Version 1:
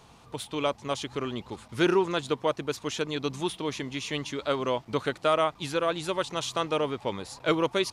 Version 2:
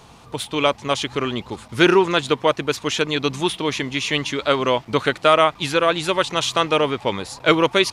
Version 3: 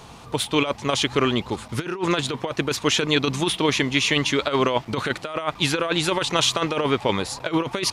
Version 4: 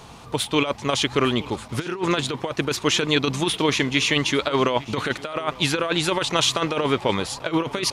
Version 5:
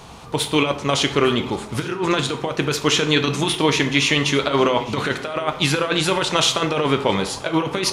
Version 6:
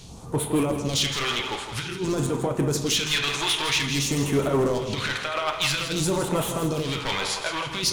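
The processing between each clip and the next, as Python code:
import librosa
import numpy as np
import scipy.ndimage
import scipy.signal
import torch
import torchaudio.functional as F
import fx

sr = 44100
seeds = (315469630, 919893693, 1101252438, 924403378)

y1 = fx.dynamic_eq(x, sr, hz=2300.0, q=0.81, threshold_db=-43.0, ratio=4.0, max_db=5)
y1 = y1 * 10.0 ** (8.0 / 20.0)
y2 = fx.over_compress(y1, sr, threshold_db=-20.0, ratio=-0.5)
y3 = y2 + 10.0 ** (-20.5 / 20.0) * np.pad(y2, (int(855 * sr / 1000.0), 0))[:len(y2)]
y4 = fx.rev_plate(y3, sr, seeds[0], rt60_s=0.64, hf_ratio=0.65, predelay_ms=0, drr_db=6.0)
y4 = y4 * 10.0 ** (2.0 / 20.0)
y5 = np.clip(y4, -10.0 ** (-18.0 / 20.0), 10.0 ** (-18.0 / 20.0))
y5 = fx.phaser_stages(y5, sr, stages=2, low_hz=170.0, high_hz=4200.0, hz=0.51, feedback_pct=50)
y5 = fx.echo_feedback(y5, sr, ms=163, feedback_pct=36, wet_db=-9.0)
y5 = y5 * 10.0 ** (-1.5 / 20.0)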